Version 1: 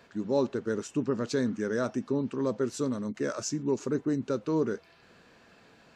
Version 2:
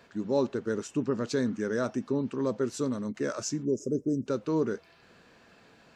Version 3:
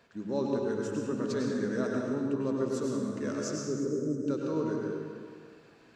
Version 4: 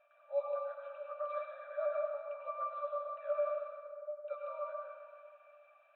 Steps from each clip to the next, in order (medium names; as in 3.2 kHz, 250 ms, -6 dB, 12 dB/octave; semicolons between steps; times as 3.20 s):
time-frequency box 3.65–4.27 s, 630–4900 Hz -27 dB
plate-style reverb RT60 1.9 s, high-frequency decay 0.6×, pre-delay 85 ms, DRR -1.5 dB; trim -6 dB
pitch-class resonator D, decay 0.18 s; FFT band-pass 510–4000 Hz; trim +15 dB